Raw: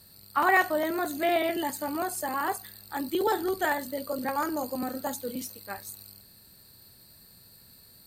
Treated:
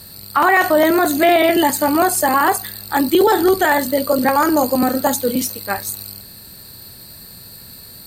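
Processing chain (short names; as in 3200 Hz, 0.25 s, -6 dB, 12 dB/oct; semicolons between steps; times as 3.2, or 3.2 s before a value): maximiser +20 dB; gain -4 dB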